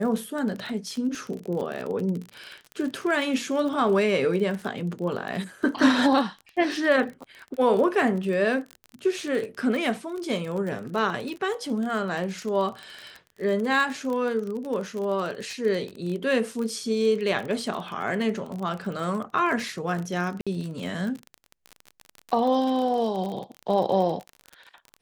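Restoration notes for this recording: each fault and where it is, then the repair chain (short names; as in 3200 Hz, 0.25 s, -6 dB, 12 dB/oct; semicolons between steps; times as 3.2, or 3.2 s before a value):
crackle 30/s -30 dBFS
20.41–20.47 gap 56 ms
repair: de-click; interpolate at 20.41, 56 ms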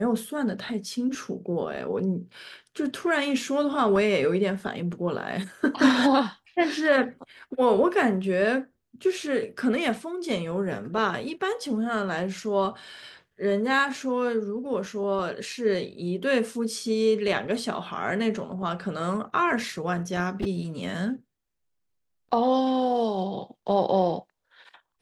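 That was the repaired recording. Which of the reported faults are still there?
none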